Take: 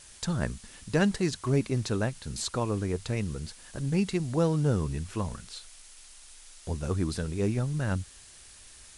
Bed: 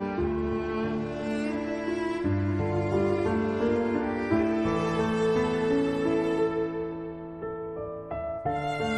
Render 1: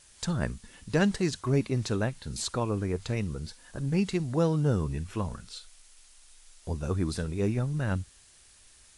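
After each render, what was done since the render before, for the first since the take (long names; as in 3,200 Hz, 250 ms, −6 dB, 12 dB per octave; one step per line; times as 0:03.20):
noise reduction from a noise print 6 dB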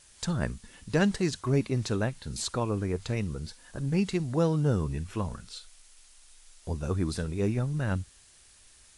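no processing that can be heard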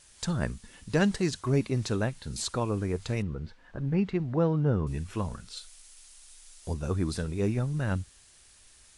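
0:03.22–0:04.87: low-pass filter 2,200 Hz
0:05.57–0:06.74: high-shelf EQ 4,200 Hz +6 dB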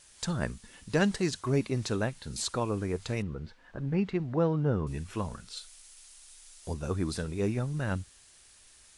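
low-shelf EQ 180 Hz −4.5 dB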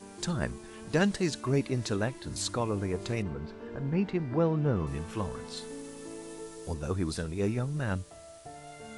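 mix in bed −17.5 dB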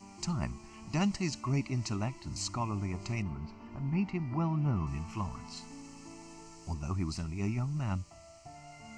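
phaser with its sweep stopped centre 2,400 Hz, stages 8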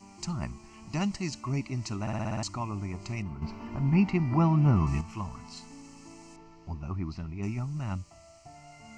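0:02.01: stutter in place 0.06 s, 7 plays
0:03.42–0:05.01: clip gain +8 dB
0:06.36–0:07.43: high-frequency loss of the air 220 metres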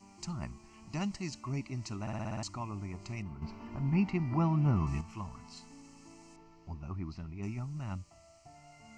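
level −5.5 dB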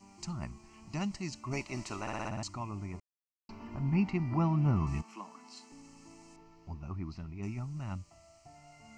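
0:01.51–0:02.28: ceiling on every frequency bin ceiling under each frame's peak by 17 dB
0:03.00–0:03.49: silence
0:05.02–0:05.72: Butterworth high-pass 230 Hz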